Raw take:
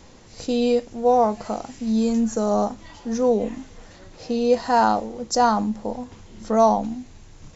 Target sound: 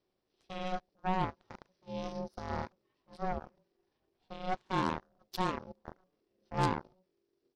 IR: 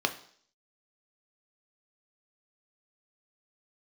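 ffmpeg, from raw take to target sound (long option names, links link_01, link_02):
-af "asetrate=33038,aresample=44100,atempo=1.33484,aeval=exprs='0.473*(cos(1*acos(clip(val(0)/0.473,-1,1)))-cos(1*PI/2))+0.075*(cos(2*acos(clip(val(0)/0.473,-1,1)))-cos(2*PI/2))+0.15*(cos(3*acos(clip(val(0)/0.473,-1,1)))-cos(3*PI/2))+0.0944*(cos(5*acos(clip(val(0)/0.473,-1,1)))-cos(5*PI/2))+0.075*(cos(7*acos(clip(val(0)/0.473,-1,1)))-cos(7*PI/2))':channel_layout=same,aeval=exprs='val(0)*sin(2*PI*370*n/s)':channel_layout=same,volume=-7.5dB"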